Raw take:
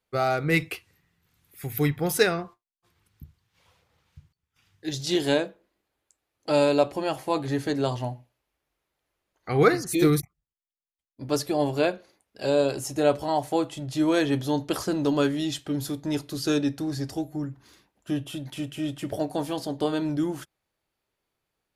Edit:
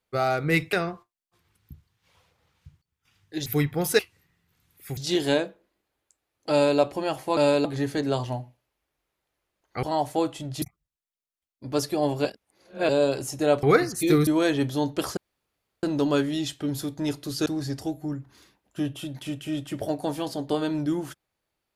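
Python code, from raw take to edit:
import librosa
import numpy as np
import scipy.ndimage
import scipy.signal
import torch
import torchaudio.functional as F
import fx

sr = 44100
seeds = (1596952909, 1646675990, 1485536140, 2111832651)

y = fx.edit(x, sr, fx.swap(start_s=0.73, length_s=0.98, other_s=2.24, other_length_s=2.73),
    fx.duplicate(start_s=6.51, length_s=0.28, to_s=7.37),
    fx.swap(start_s=9.55, length_s=0.64, other_s=13.2, other_length_s=0.79),
    fx.reverse_span(start_s=11.82, length_s=0.64),
    fx.insert_room_tone(at_s=14.89, length_s=0.66),
    fx.cut(start_s=16.52, length_s=0.25), tone=tone)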